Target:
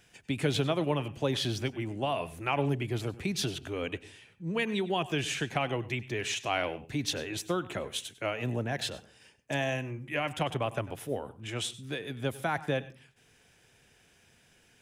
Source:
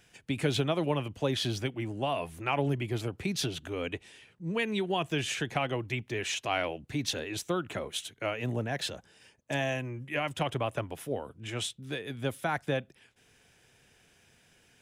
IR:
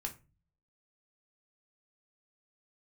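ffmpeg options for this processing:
-filter_complex "[0:a]asplit=2[link_01][link_02];[1:a]atrim=start_sample=2205,adelay=97[link_03];[link_02][link_03]afir=irnorm=-1:irlink=0,volume=-15.5dB[link_04];[link_01][link_04]amix=inputs=2:normalize=0"

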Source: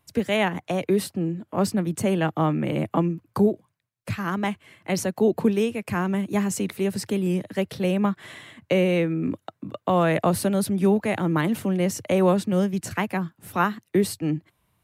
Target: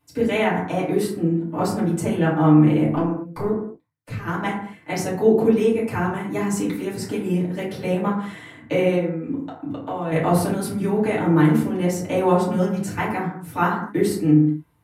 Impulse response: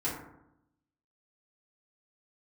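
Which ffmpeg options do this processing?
-filter_complex "[0:a]asettb=1/sr,asplit=3[link_01][link_02][link_03];[link_01]atrim=end=2.954[link_04];[link_02]atrim=start=2.95:end=4.27,asetpts=PTS-STARTPTS,afade=type=in:duration=0.004:curve=qsin,afade=type=out:start_time=1.316:duration=0.004:curve=qsin,aeval=exprs='(tanh(7.08*val(0)+0.8)-tanh(0.8))/7.08':channel_layout=same[link_05];[link_03]atrim=start=4.266[link_06];[link_04][link_05]acrossfade=duration=0.004:curve1=hsin:curve2=qsin[link_07];[link_07][link_06]acrossfade=duration=0.004:curve1=qsin:curve2=hsin,asettb=1/sr,asplit=3[link_08][link_09][link_10];[link_08]atrim=end=8.954[link_11];[link_09]atrim=start=8.95:end=10.12,asetpts=PTS-STARTPTS,afade=type=in:duration=0.004:curve=qsin,afade=type=out:start_time=1.166:duration=0.004:curve=qsin,acompressor=threshold=-28dB:ratio=10[link_12];[link_10]atrim=start=10.116[link_13];[link_11][link_12]acrossfade=duration=0.004:curve1=hsin:curve2=qsin[link_14];[link_14][link_13]acrossfade=duration=0.004:curve1=qsin:curve2=hsin[link_15];[1:a]atrim=start_sample=2205,afade=type=out:start_time=0.3:duration=0.01,atrim=end_sample=13671[link_16];[link_15][link_16]afir=irnorm=-1:irlink=0,volume=-3.5dB"

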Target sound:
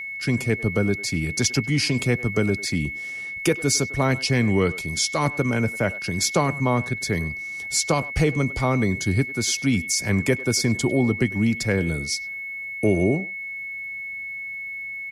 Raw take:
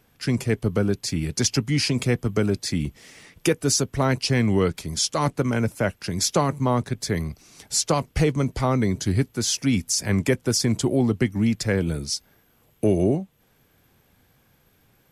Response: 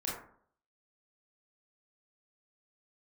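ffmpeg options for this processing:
-filter_complex "[0:a]asplit=2[link_01][link_02];[link_02]adelay=100,highpass=300,lowpass=3400,asoftclip=type=hard:threshold=-17dB,volume=-17dB[link_03];[link_01][link_03]amix=inputs=2:normalize=0,aeval=exprs='val(0)+0.0316*sin(2*PI*2200*n/s)':channel_layout=same"

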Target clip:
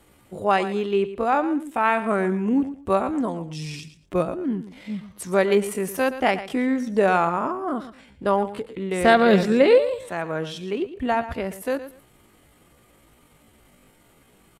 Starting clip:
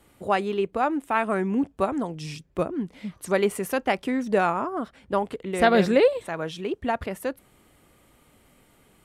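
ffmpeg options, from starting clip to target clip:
ffmpeg -i in.wav -af "aecho=1:1:70|140:0.224|0.0448,atempo=0.62,volume=2.5dB" out.wav

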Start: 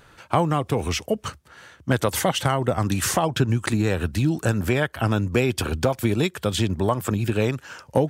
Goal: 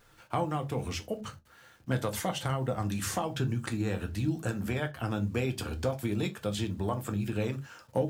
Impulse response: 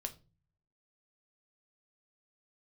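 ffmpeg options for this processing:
-filter_complex "[0:a]acrusher=bits=8:mix=0:aa=0.000001[link_01];[1:a]atrim=start_sample=2205,atrim=end_sample=6615,asetrate=57330,aresample=44100[link_02];[link_01][link_02]afir=irnorm=-1:irlink=0,volume=-6.5dB"

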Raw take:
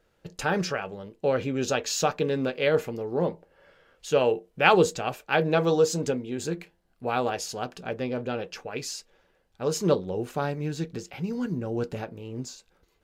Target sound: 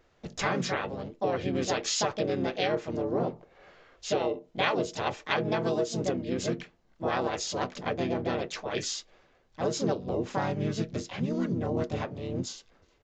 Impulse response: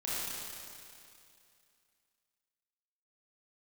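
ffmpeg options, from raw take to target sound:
-filter_complex "[0:a]asplit=3[link_01][link_02][link_03];[link_02]asetrate=33038,aresample=44100,atempo=1.33484,volume=-4dB[link_04];[link_03]asetrate=58866,aresample=44100,atempo=0.749154,volume=-3dB[link_05];[link_01][link_04][link_05]amix=inputs=3:normalize=0,aresample=16000,aresample=44100,acompressor=threshold=-25dB:ratio=6"

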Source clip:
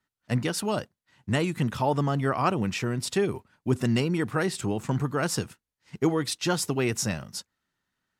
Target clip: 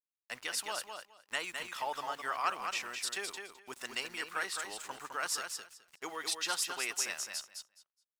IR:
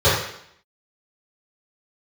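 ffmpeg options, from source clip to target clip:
-filter_complex "[0:a]highpass=1100,aeval=exprs='val(0)*gte(abs(val(0)),0.00335)':channel_layout=same,asplit=2[link_01][link_02];[link_02]aecho=0:1:210|420|630:0.501|0.0852|0.0145[link_03];[link_01][link_03]amix=inputs=2:normalize=0,volume=-3.5dB"

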